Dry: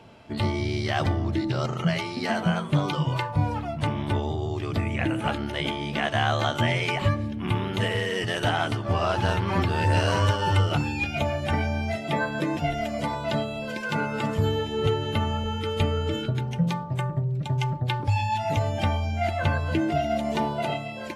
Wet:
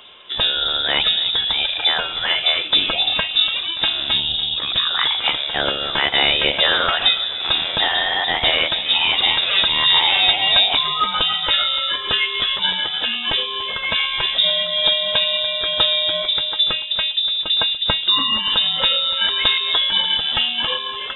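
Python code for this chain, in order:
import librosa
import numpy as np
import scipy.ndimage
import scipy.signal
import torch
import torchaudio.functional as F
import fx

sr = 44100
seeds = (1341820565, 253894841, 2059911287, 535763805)

y = fx.high_shelf(x, sr, hz=2100.0, db=8.5)
y = fx.echo_feedback(y, sr, ms=289, feedback_pct=56, wet_db=-16.0)
y = fx.freq_invert(y, sr, carrier_hz=3700)
y = F.gain(torch.from_numpy(y), 5.0).numpy()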